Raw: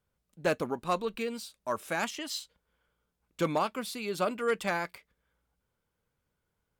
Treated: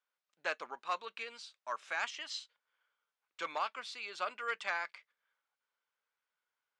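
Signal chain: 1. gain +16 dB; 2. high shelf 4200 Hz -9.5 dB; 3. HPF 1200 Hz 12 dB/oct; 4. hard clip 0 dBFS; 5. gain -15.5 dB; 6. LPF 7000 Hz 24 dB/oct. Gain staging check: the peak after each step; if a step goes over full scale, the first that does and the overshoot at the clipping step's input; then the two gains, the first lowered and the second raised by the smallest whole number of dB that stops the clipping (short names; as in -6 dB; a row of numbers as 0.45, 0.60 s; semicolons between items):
-3.0, -3.0, -4.5, -4.5, -20.0, -20.5 dBFS; no overload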